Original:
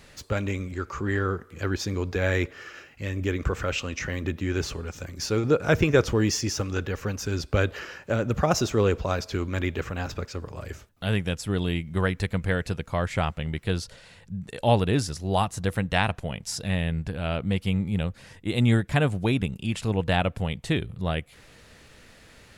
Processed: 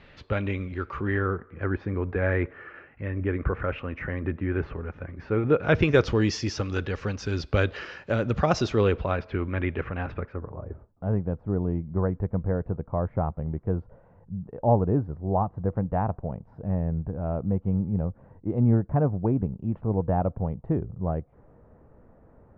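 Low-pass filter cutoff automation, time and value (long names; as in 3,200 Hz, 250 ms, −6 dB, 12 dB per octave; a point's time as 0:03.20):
low-pass filter 24 dB per octave
0:00.94 3,400 Hz
0:01.44 2,000 Hz
0:05.32 2,000 Hz
0:05.89 4,900 Hz
0:08.68 4,900 Hz
0:09.28 2,500 Hz
0:10.14 2,500 Hz
0:10.63 1,000 Hz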